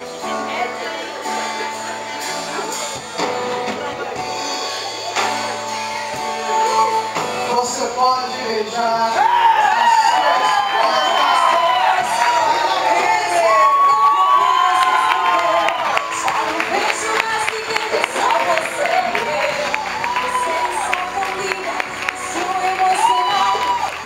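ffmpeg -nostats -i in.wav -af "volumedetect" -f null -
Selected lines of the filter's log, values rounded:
mean_volume: -17.6 dB
max_volume: -1.2 dB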